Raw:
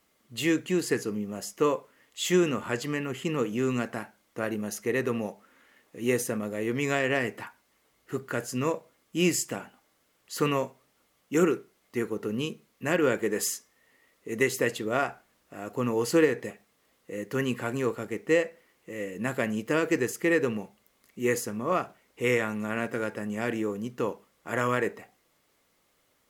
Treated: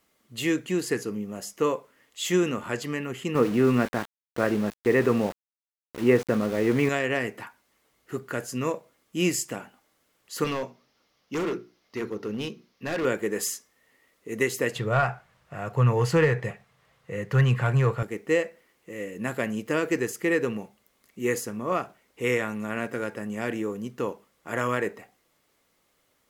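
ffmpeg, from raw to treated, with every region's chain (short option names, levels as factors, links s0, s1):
-filter_complex "[0:a]asettb=1/sr,asplit=3[s0][s1][s2];[s0]atrim=end=3.354[s3];[s1]atrim=start=3.35:end=6.89,asetpts=PTS-STARTPTS,afade=t=in:d=0.004:c=qsin,afade=t=out:st=3.536:d=0.004:c=qsin,lowpass=2100,aeval=exprs='val(0)*gte(abs(val(0)),0.00944)':c=same,acontrast=72[s4];[s2]atrim=start=6.886[s5];[s3][s4]acrossfade=d=0.004:c1=hsin:c2=qsin[s6];[s6][s5]acrossfade=d=0.004:c1=qsin:c2=hsin,asettb=1/sr,asplit=3[s7][s8][s9];[s7]atrim=end=10.444[s10];[s8]atrim=start=10.44:end=13.05,asetpts=PTS-STARTPTS,afade=t=in:d=0.004:c=qsin,afade=t=out:st=2.606:d=0.004:c=qsin,highshelf=f=6600:t=q:w=3:g=-7.5,bandreject=f=60:t=h:w=6,bandreject=f=120:t=h:w=6,bandreject=f=180:t=h:w=6,bandreject=f=240:t=h:w=6,bandreject=f=300:t=h:w=6,bandreject=f=360:t=h:w=6,volume=17.8,asoftclip=hard,volume=0.0562[s11];[s9]atrim=start=13.046[s12];[s10][s11]acrossfade=d=0.004:c1=hsin:c2=qsin[s13];[s13][s12]acrossfade=d=0.004:c1=qsin:c2=hsin,asettb=1/sr,asplit=3[s14][s15][s16];[s14]atrim=end=14.754[s17];[s15]atrim=start=14.75:end=18.03,asetpts=PTS-STARTPTS,afade=t=in:d=0.004:c=qsin,afade=t=out:st=3.276:d=0.004:c=qsin,lowshelf=f=190:t=q:w=3:g=12,asplit=2[s18][s19];[s19]highpass=f=720:p=1,volume=5.62,asoftclip=type=tanh:threshold=0.355[s20];[s18][s20]amix=inputs=2:normalize=0,lowpass=f=1600:p=1,volume=0.501[s21];[s16]atrim=start=18.026[s22];[s17][s21]acrossfade=d=0.004:c1=hsin:c2=qsin[s23];[s23][s22]acrossfade=d=0.004:c1=qsin:c2=hsin"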